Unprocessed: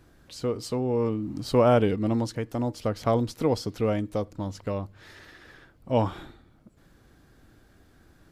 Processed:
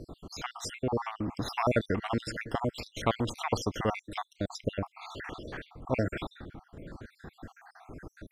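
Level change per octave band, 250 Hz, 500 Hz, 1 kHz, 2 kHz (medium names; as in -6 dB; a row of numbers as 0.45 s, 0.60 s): -6.5 dB, -8.0 dB, -3.0 dB, +3.5 dB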